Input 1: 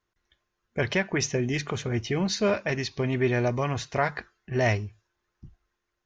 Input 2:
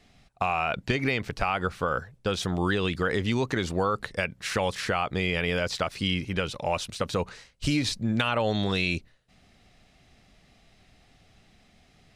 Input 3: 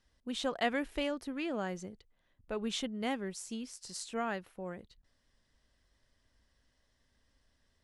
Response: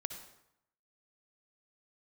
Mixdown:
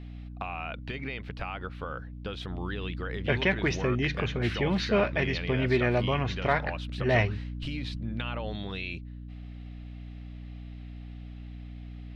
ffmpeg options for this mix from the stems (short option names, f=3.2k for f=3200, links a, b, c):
-filter_complex "[0:a]aeval=exprs='val(0)+0.00891*(sin(2*PI*60*n/s)+sin(2*PI*2*60*n/s)/2+sin(2*PI*3*60*n/s)/3+sin(2*PI*4*60*n/s)/4+sin(2*PI*5*60*n/s)/5)':c=same,adelay=2500,volume=-1dB[a];[1:a]acompressor=threshold=-40dB:ratio=2.5,volume=0.5dB[b];[a][b]amix=inputs=2:normalize=0,highshelf=f=4.8k:t=q:w=1.5:g=-13,aeval=exprs='val(0)+0.01*(sin(2*PI*60*n/s)+sin(2*PI*2*60*n/s)/2+sin(2*PI*3*60*n/s)/3+sin(2*PI*4*60*n/s)/4+sin(2*PI*5*60*n/s)/5)':c=same"